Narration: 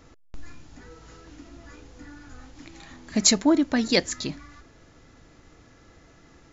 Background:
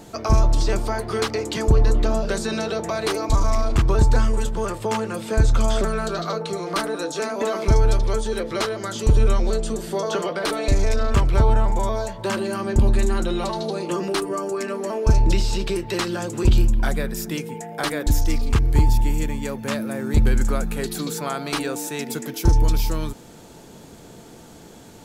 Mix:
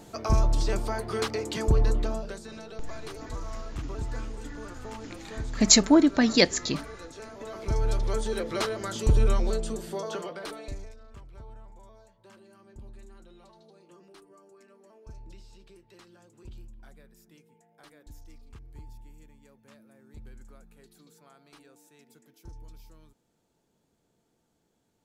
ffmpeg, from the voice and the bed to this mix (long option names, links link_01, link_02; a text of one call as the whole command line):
ffmpeg -i stem1.wav -i stem2.wav -filter_complex "[0:a]adelay=2450,volume=1.5dB[link_01];[1:a]volume=7dB,afade=type=out:start_time=1.86:duration=0.55:silence=0.251189,afade=type=in:start_time=7.45:duration=0.81:silence=0.223872,afade=type=out:start_time=9.37:duration=1.58:silence=0.0562341[link_02];[link_01][link_02]amix=inputs=2:normalize=0" out.wav